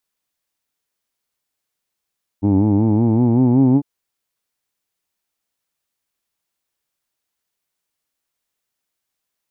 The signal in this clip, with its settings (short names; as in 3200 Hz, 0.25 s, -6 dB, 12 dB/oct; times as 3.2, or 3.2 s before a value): formant vowel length 1.40 s, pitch 96.6 Hz, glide +6 st, F1 280 Hz, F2 860 Hz, F3 2300 Hz